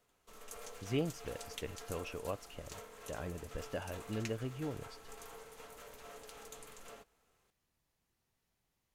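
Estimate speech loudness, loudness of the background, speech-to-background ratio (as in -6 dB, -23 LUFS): -42.5 LUFS, -51.0 LUFS, 8.5 dB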